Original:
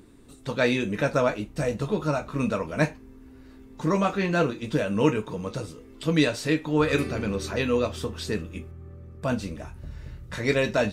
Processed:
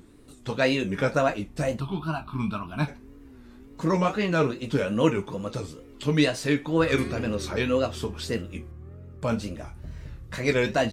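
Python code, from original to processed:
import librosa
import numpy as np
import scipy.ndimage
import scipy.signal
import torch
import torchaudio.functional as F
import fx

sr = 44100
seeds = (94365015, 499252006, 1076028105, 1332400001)

y = fx.wow_flutter(x, sr, seeds[0], rate_hz=2.1, depth_cents=140.0)
y = fx.fixed_phaser(y, sr, hz=1900.0, stages=6, at=(1.79, 2.87), fade=0.02)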